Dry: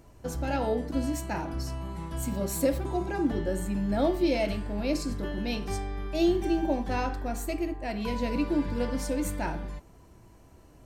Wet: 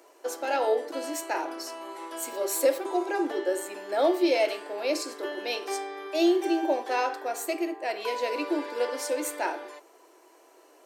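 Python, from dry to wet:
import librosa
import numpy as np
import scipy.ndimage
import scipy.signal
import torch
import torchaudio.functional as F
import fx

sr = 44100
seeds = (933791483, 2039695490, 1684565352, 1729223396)

y = scipy.signal.sosfilt(scipy.signal.butter(8, 340.0, 'highpass', fs=sr, output='sos'), x)
y = y * 10.0 ** (4.5 / 20.0)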